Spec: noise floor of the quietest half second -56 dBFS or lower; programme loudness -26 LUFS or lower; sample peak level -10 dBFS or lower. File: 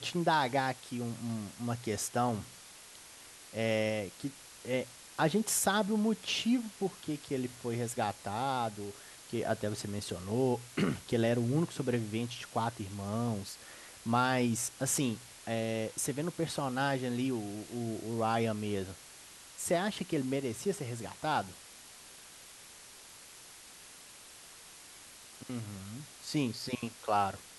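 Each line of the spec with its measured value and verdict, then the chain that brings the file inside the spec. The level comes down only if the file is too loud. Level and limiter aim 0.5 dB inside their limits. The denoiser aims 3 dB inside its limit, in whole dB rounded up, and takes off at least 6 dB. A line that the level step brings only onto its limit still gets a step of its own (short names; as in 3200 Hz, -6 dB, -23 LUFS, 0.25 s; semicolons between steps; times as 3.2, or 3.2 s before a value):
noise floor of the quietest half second -53 dBFS: fail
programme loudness -34.0 LUFS: OK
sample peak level -15.5 dBFS: OK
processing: denoiser 6 dB, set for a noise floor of -53 dBFS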